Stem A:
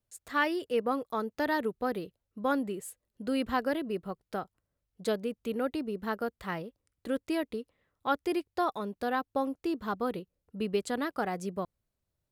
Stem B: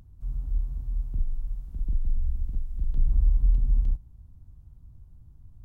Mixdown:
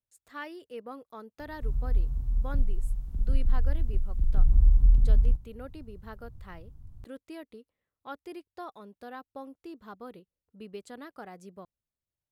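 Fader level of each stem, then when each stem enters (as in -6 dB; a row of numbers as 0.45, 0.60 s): -12.0, +2.0 dB; 0.00, 1.40 s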